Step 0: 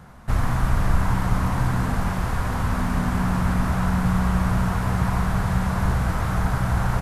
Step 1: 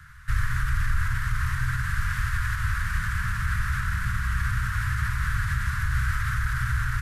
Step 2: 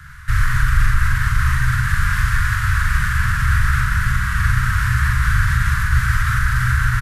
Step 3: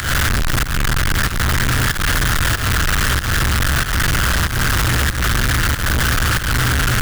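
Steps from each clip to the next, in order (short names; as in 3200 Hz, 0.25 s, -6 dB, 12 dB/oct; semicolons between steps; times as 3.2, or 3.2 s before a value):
band shelf 1100 Hz +9.5 dB; limiter -12.5 dBFS, peak gain reduction 6 dB; inverse Chebyshev band-stop 280–700 Hz, stop band 60 dB
doubler 42 ms -3 dB; gain +7.5 dB
infinite clipping; pump 94 bpm, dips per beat 1, -13 dB, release 0.188 s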